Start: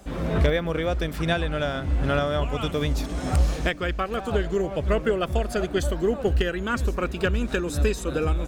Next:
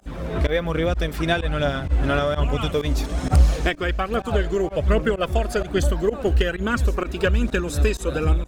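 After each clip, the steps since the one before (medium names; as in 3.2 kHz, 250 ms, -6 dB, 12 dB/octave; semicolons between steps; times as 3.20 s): level rider gain up to 5.5 dB; phaser 1.2 Hz, delay 3.3 ms, feedback 36%; volume shaper 128 bpm, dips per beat 1, -23 dB, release 67 ms; trim -3 dB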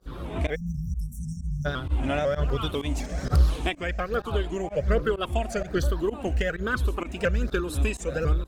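drifting ripple filter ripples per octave 0.59, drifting -1.2 Hz, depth 9 dB; spectral selection erased 0.55–1.66 s, 250–5400 Hz; vibrato with a chosen wave saw up 4 Hz, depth 100 cents; trim -6 dB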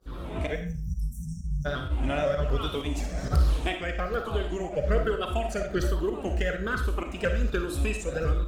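flange 1.1 Hz, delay 2.3 ms, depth 4.7 ms, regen -87%; on a send at -5 dB: reverberation RT60 0.40 s, pre-delay 15 ms; on the sum: trim +2 dB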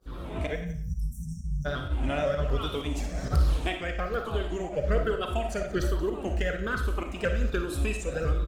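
delay 179 ms -17.5 dB; trim -1 dB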